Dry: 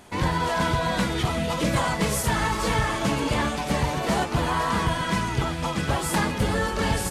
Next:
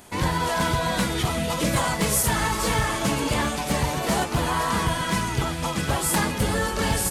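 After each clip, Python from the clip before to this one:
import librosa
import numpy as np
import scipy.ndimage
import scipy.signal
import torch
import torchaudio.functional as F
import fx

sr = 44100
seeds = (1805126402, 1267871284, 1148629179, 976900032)

y = fx.high_shelf(x, sr, hz=7800.0, db=11.5)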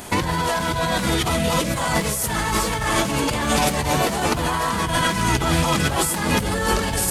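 y = fx.over_compress(x, sr, threshold_db=-29.0, ratio=-1.0)
y = y * librosa.db_to_amplitude(7.5)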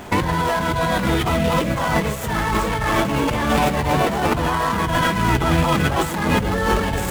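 y = scipy.ndimage.median_filter(x, 9, mode='constant')
y = y * librosa.db_to_amplitude(2.5)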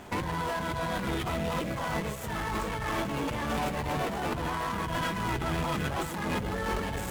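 y = fx.tube_stage(x, sr, drive_db=16.0, bias=0.5)
y = y * librosa.db_to_amplitude(-8.5)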